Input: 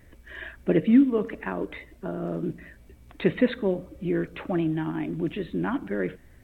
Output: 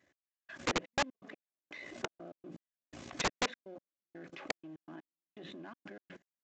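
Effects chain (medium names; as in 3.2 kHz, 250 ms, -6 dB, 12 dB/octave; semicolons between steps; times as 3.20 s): partial rectifier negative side -7 dB; recorder AGC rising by 47 dB/s; high-pass 140 Hz 12 dB/octave; tone controls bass -10 dB, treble +3 dB; hum notches 60/120/180 Hz; level held to a coarse grid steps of 24 dB; comb of notches 460 Hz; trance gate "x...xxx.x." 123 bpm -60 dB; integer overflow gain 24.5 dB; resampled via 16 kHz; trim +1 dB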